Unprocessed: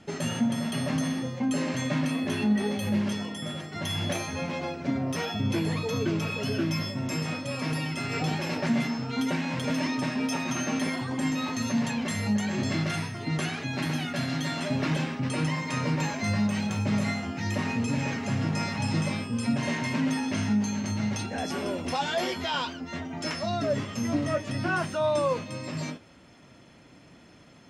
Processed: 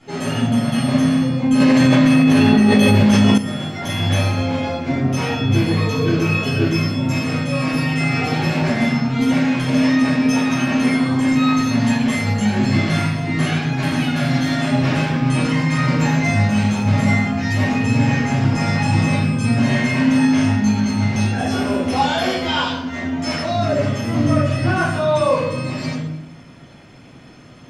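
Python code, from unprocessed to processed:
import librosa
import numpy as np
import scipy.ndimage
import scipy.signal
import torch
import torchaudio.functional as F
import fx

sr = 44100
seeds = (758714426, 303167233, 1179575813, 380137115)

y = fx.room_shoebox(x, sr, seeds[0], volume_m3=230.0, walls='mixed', distance_m=4.0)
y = fx.env_flatten(y, sr, amount_pct=100, at=(1.6, 3.38))
y = F.gain(torch.from_numpy(y), -3.0).numpy()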